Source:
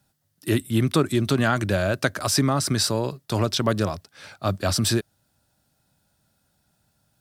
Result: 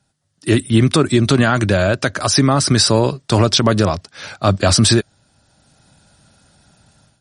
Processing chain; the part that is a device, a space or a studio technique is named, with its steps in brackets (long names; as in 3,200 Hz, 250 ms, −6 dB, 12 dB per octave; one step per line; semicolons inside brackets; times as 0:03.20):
0:01.50–0:02.36: low-pass filter 12,000 Hz 12 dB per octave
low-bitrate web radio (automatic gain control gain up to 14 dB; brickwall limiter −5.5 dBFS, peak gain reduction 4.5 dB; level +3 dB; MP3 40 kbit/s 44,100 Hz)